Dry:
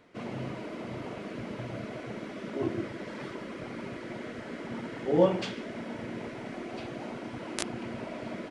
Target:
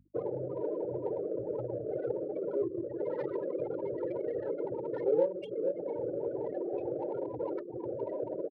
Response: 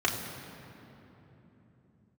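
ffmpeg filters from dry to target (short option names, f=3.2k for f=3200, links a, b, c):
-filter_complex "[0:a]aecho=1:1:457|914|1371:0.126|0.0428|0.0146,asplit=2[a][b];[b]acrusher=bits=4:mode=log:mix=0:aa=0.000001,volume=-6dB[c];[a][c]amix=inputs=2:normalize=0,acompressor=threshold=-39dB:ratio=6,afftfilt=real='re*gte(hypot(re,im),0.0158)':imag='im*gte(hypot(re,im),0.0158)':win_size=1024:overlap=0.75,aecho=1:1:2.2:0.86,adynamicsmooth=sensitivity=6:basefreq=1.8k,highshelf=f=2k:g=10.5,aeval=exprs='val(0)+0.00178*(sin(2*PI*50*n/s)+sin(2*PI*2*50*n/s)/2+sin(2*PI*3*50*n/s)/3+sin(2*PI*4*50*n/s)/4+sin(2*PI*5*50*n/s)/5)':c=same,bandreject=f=50:t=h:w=6,bandreject=f=100:t=h:w=6,bandreject=f=150:t=h:w=6,bandreject=f=200:t=h:w=6,bandreject=f=250:t=h:w=6,aexciter=amount=1.4:drive=6:freq=3.7k,highpass=77,equalizer=f=520:w=1.3:g=10.5"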